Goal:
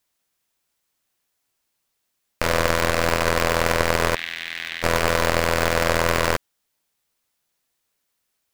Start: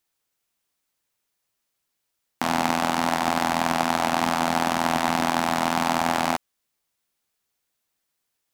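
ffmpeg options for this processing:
-filter_complex "[0:a]asplit=3[a][b][c];[a]afade=t=out:st=4.14:d=0.02[d];[b]asuperpass=centerf=2600:order=12:qfactor=1.2,afade=t=in:st=4.14:d=0.02,afade=t=out:st=4.82:d=0.02[e];[c]afade=t=in:st=4.82:d=0.02[f];[d][e][f]amix=inputs=3:normalize=0,aeval=exprs='val(0)*sgn(sin(2*PI*250*n/s))':c=same,volume=3dB"

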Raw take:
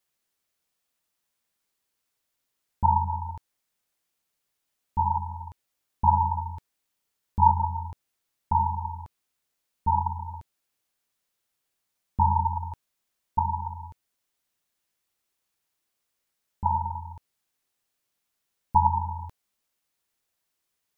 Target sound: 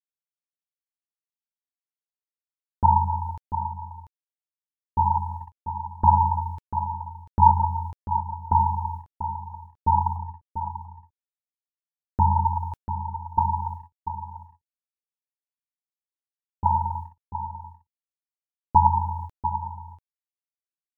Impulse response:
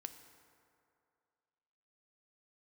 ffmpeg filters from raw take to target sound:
-filter_complex "[0:a]asettb=1/sr,asplit=3[a][b][c];[a]atrim=end=10.164[d];[b]atrim=start=10.16:end=12.44,asetpts=PTS-STARTPTS,afade=t=in:d=0.004:c=qsin,afade=t=out:st=2.276:d=0.004:c=qsin,lowpass=1k[e];[c]atrim=start=12.436[f];[d][e]acrossfade=d=0.004:c1=hsin:c2=qsin[g];[g][f]acrossfade=d=0.004:c1=qsin:c2=hsin,agate=range=-36dB:threshold=-36dB:ratio=16:detection=peak,aecho=1:1:691:0.316,volume=3.5dB"

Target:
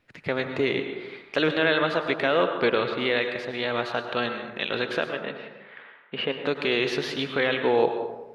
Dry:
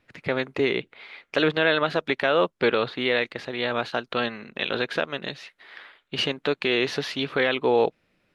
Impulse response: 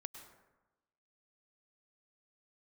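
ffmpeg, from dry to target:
-filter_complex "[0:a]asplit=3[a][b][c];[a]afade=t=out:st=5.08:d=0.02[d];[b]highpass=170,equalizer=f=210:t=q:w=4:g=4,equalizer=f=320:t=q:w=4:g=-5,equalizer=f=480:t=q:w=4:g=7,lowpass=f=2.9k:w=0.5412,lowpass=f=2.9k:w=1.3066,afade=t=in:st=5.08:d=0.02,afade=t=out:st=6.45:d=0.02[e];[c]afade=t=in:st=6.45:d=0.02[f];[d][e][f]amix=inputs=3:normalize=0[g];[1:a]atrim=start_sample=2205[h];[g][h]afir=irnorm=-1:irlink=0,volume=3.5dB"

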